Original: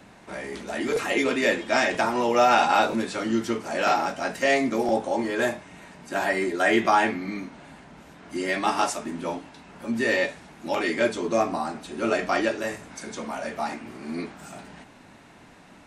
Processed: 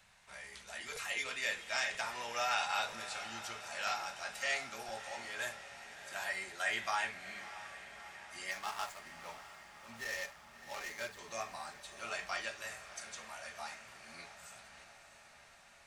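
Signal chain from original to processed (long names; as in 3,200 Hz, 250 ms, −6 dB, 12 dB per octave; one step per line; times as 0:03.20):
0:08.51–0:11.19: running median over 15 samples
guitar amp tone stack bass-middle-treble 10-0-10
feedback delay with all-pass diffusion 646 ms, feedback 69%, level −13 dB
level −6 dB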